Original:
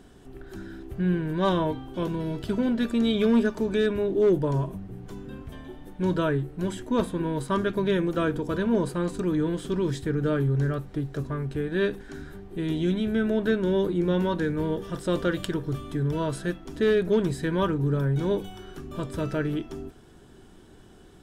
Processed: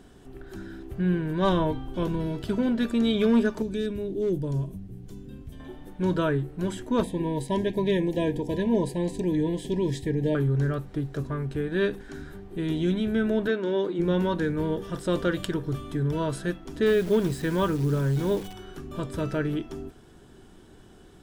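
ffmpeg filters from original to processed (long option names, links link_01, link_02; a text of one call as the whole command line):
ffmpeg -i in.wav -filter_complex "[0:a]asettb=1/sr,asplit=3[link_01][link_02][link_03];[link_01]atrim=end=1.424[link_04];[link_02]atrim=start=1.42:end=2.27,asetpts=PTS-STARTPTS,afade=type=in:duration=0.004:curve=qsin,afade=type=out:start_time=0.846:duration=0.004:curve=qsin,lowshelf=frequency=69:gain=11[link_05];[link_03]atrim=start=2.266[link_06];[link_04][link_05]acrossfade=duration=0.004:curve1=hsin:curve2=qsin[link_07];[link_07][link_06]acrossfade=duration=0.004:curve1=qsin:curve2=hsin,asettb=1/sr,asplit=3[link_08][link_09][link_10];[link_08]atrim=end=3.624[link_11];[link_09]atrim=start=3.62:end=5.6,asetpts=PTS-STARTPTS,afade=type=in:duration=0.004:curve=qsin,afade=type=out:start_time=1.976:duration=0.004:curve=qsin,equalizer=frequency=1100:width=0.48:gain=-14[link_12];[link_10]atrim=start=5.596[link_13];[link_11][link_12]acrossfade=duration=0.004:curve1=hsin:curve2=qsin[link_14];[link_14][link_13]acrossfade=duration=0.004:curve1=qsin:curve2=hsin,asettb=1/sr,asplit=3[link_15][link_16][link_17];[link_15]atrim=end=7.034[link_18];[link_16]atrim=start=7.03:end=10.35,asetpts=PTS-STARTPTS,afade=type=in:duration=0.004:curve=qsin,afade=type=out:start_time=3.316:duration=0.004:curve=qsin,asuperstop=centerf=1300:order=20:qfactor=2.1[link_19];[link_17]atrim=start=10.346[link_20];[link_18][link_19]acrossfade=duration=0.004:curve1=hsin:curve2=qsin[link_21];[link_21][link_20]acrossfade=duration=0.004:curve1=qsin:curve2=hsin,asplit=3[link_22][link_23][link_24];[link_22]afade=type=out:start_time=13.47:duration=0.02[link_25];[link_23]highpass=290,lowpass=5900,afade=type=in:start_time=13.47:duration=0.02,afade=type=out:start_time=13.98:duration=0.02[link_26];[link_24]afade=type=in:start_time=13.98:duration=0.02[link_27];[link_25][link_26][link_27]amix=inputs=3:normalize=0,asettb=1/sr,asplit=3[link_28][link_29][link_30];[link_28]atrim=end=16.864[link_31];[link_29]atrim=start=16.86:end=18.53,asetpts=PTS-STARTPTS,afade=type=in:duration=0.004:curve=qsin,afade=type=out:start_time=1.666:duration=0.004:curve=qsin,acrusher=bits=8:dc=4:mix=0:aa=0.000001[link_32];[link_30]atrim=start=18.526[link_33];[link_31][link_32]acrossfade=duration=0.004:curve1=hsin:curve2=qsin[link_34];[link_34][link_33]acrossfade=duration=0.004:curve1=qsin:curve2=hsin" out.wav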